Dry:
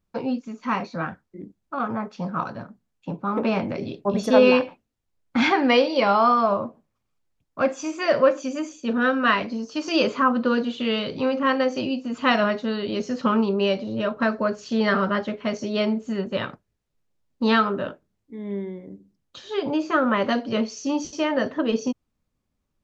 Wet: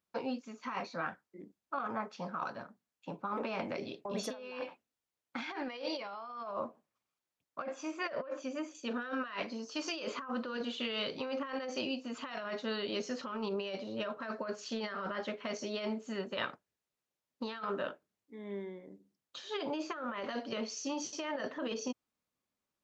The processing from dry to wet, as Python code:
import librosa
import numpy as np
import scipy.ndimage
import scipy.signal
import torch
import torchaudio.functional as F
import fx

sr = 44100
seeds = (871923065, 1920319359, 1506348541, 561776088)

y = fx.lowpass(x, sr, hz=2000.0, slope=6, at=(7.62, 8.75))
y = fx.highpass(y, sr, hz=620.0, slope=6)
y = fx.over_compress(y, sr, threshold_db=-30.0, ratio=-1.0)
y = F.gain(torch.from_numpy(y), -8.0).numpy()